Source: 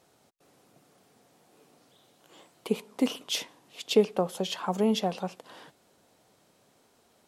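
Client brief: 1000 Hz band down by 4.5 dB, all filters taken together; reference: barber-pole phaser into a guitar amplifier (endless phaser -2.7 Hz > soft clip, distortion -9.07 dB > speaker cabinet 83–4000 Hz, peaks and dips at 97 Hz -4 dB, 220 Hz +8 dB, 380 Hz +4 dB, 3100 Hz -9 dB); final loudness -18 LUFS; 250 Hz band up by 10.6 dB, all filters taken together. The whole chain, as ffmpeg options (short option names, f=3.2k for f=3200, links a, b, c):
-filter_complex "[0:a]equalizer=f=250:t=o:g=5.5,equalizer=f=1k:t=o:g=-7.5,asplit=2[a][b];[b]afreqshift=-2.7[c];[a][c]amix=inputs=2:normalize=1,asoftclip=threshold=-22.5dB,highpass=83,equalizer=f=97:t=q:w=4:g=-4,equalizer=f=220:t=q:w=4:g=8,equalizer=f=380:t=q:w=4:g=4,equalizer=f=3.1k:t=q:w=4:g=-9,lowpass=f=4k:w=0.5412,lowpass=f=4k:w=1.3066,volume=11.5dB"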